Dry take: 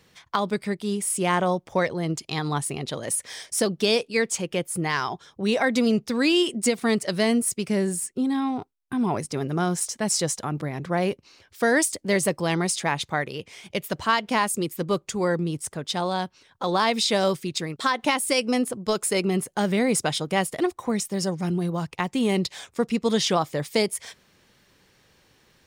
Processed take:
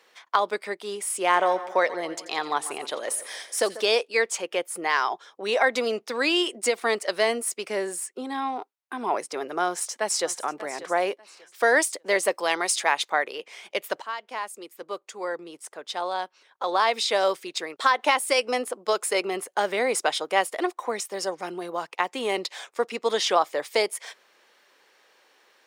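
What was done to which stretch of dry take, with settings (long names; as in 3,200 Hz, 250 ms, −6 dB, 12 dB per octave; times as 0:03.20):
0:01.20–0:03.81: echo with a time of its own for lows and highs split 2,000 Hz, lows 142 ms, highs 86 ms, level −15 dB
0:09.66–0:10.36: delay throw 590 ms, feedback 25%, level −15 dB
0:12.31–0:13.10: spectral tilt +1.5 dB per octave
0:14.02–0:17.84: fade in, from −15 dB
whole clip: Bessel high-pass filter 600 Hz, order 4; high-shelf EQ 2,800 Hz −9 dB; level +5.5 dB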